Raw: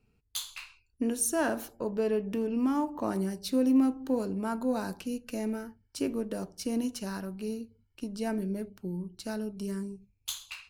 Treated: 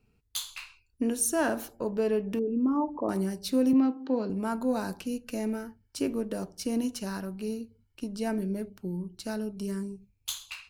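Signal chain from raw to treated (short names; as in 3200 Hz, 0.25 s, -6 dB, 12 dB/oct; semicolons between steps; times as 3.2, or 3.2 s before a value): 2.39–3.09 formant sharpening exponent 2; 3.73–4.3 elliptic band-pass 170–4600 Hz, stop band 40 dB; gain +1.5 dB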